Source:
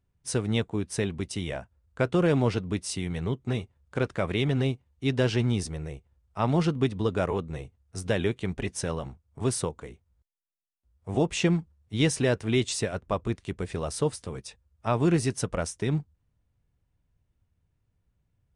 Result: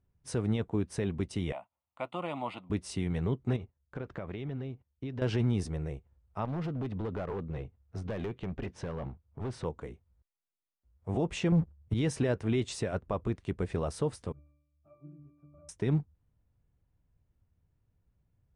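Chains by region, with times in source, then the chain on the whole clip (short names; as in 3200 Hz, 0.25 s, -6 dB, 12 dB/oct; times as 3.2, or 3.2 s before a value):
1.52–2.7 HPF 430 Hz + fixed phaser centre 1600 Hz, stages 6
3.56–5.22 gate -56 dBFS, range -13 dB + compressor 12:1, threshold -33 dBFS + air absorption 94 m
6.45–9.65 LPF 4100 Hz + compressor 5:1, threshold -28 dBFS + hard clip -31 dBFS
11.52–11.94 low shelf 250 Hz +10 dB + sample leveller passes 2
14.32–15.69 median filter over 15 samples + compressor, threshold -32 dBFS + octave resonator D, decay 0.8 s
whole clip: limiter -20 dBFS; high shelf 2600 Hz -11.5 dB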